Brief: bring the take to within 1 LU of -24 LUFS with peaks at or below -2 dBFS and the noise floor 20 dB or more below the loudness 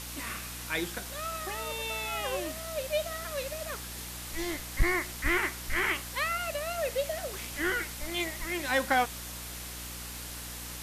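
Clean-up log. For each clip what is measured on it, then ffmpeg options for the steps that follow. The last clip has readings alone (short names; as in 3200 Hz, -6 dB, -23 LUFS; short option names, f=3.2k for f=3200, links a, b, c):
hum 60 Hz; harmonics up to 300 Hz; hum level -43 dBFS; noise floor -41 dBFS; noise floor target -53 dBFS; loudness -32.5 LUFS; peak -16.0 dBFS; loudness target -24.0 LUFS
-> -af "bandreject=f=60:t=h:w=6,bandreject=f=120:t=h:w=6,bandreject=f=180:t=h:w=6,bandreject=f=240:t=h:w=6,bandreject=f=300:t=h:w=6"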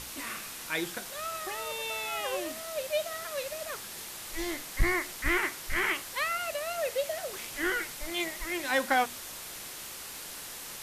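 hum none; noise floor -43 dBFS; noise floor target -53 dBFS
-> -af "afftdn=nr=10:nf=-43"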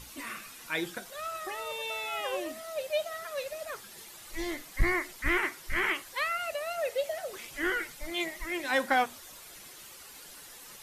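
noise floor -49 dBFS; noise floor target -53 dBFS
-> -af "afftdn=nr=6:nf=-49"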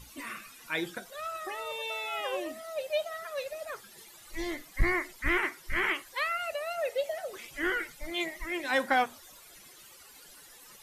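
noise floor -54 dBFS; loudness -32.5 LUFS; peak -16.0 dBFS; loudness target -24.0 LUFS
-> -af "volume=8.5dB"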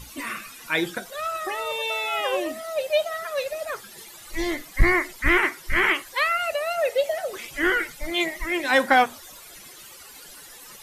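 loudness -24.0 LUFS; peak -7.5 dBFS; noise floor -45 dBFS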